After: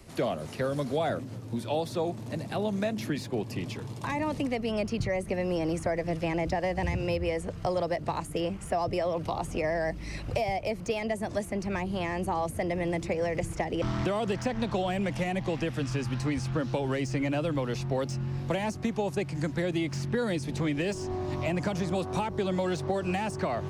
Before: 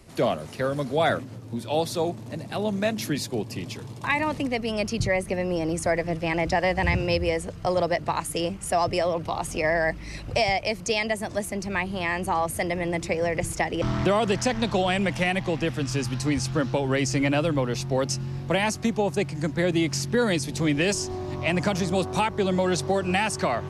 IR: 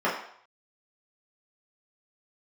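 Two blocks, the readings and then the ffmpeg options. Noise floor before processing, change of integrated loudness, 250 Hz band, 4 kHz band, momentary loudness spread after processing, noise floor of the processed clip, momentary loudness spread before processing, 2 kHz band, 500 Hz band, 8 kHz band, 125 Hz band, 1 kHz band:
-39 dBFS, -5.0 dB, -4.0 dB, -9.0 dB, 3 LU, -40 dBFS, 5 LU, -9.0 dB, -4.5 dB, -11.5 dB, -3.5 dB, -6.0 dB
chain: -filter_complex "[0:a]acrossover=split=1200[s0][s1];[s1]asoftclip=type=tanh:threshold=0.0708[s2];[s0][s2]amix=inputs=2:normalize=0,acrossover=split=810|2900[s3][s4][s5];[s3]acompressor=threshold=0.0447:ratio=4[s6];[s4]acompressor=threshold=0.0112:ratio=4[s7];[s5]acompressor=threshold=0.00447:ratio=4[s8];[s6][s7][s8]amix=inputs=3:normalize=0"

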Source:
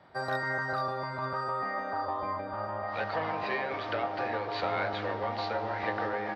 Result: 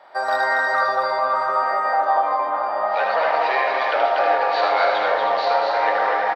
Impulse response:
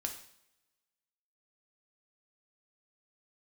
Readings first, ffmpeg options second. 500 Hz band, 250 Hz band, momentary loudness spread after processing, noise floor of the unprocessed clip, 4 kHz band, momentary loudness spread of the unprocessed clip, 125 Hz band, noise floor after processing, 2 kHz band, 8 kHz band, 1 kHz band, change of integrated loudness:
+12.5 dB, -1.0 dB, 3 LU, -37 dBFS, +11.5 dB, 3 LU, under -15 dB, -24 dBFS, +12.0 dB, no reading, +14.5 dB, +13.0 dB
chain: -filter_complex "[0:a]highpass=f=660:t=q:w=1.6,aecho=1:1:239:0.631,asplit=2[s0][s1];[1:a]atrim=start_sample=2205,adelay=77[s2];[s1][s2]afir=irnorm=-1:irlink=0,volume=0.708[s3];[s0][s3]amix=inputs=2:normalize=0,volume=2.51"

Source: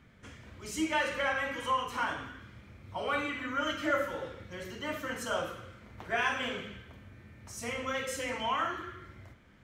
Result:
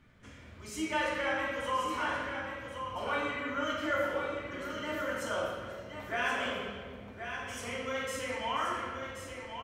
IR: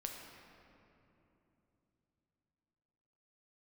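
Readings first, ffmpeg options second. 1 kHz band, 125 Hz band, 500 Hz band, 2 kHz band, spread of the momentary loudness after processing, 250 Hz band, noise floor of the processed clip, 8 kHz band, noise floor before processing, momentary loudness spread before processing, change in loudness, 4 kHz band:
-0.5 dB, -0.5 dB, +1.0 dB, -0.5 dB, 11 LU, -0.5 dB, -51 dBFS, -2.0 dB, -58 dBFS, 20 LU, -1.0 dB, -1.0 dB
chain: -filter_complex "[0:a]aecho=1:1:1079:0.422[s0];[1:a]atrim=start_sample=2205,asetrate=88200,aresample=44100[s1];[s0][s1]afir=irnorm=-1:irlink=0,volume=2"

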